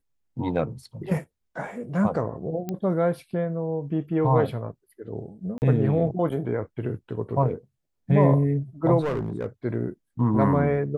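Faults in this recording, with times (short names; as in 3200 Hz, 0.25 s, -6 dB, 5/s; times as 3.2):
2.69 pop -17 dBFS
5.58–5.62 gap 39 ms
9–9.46 clipped -22.5 dBFS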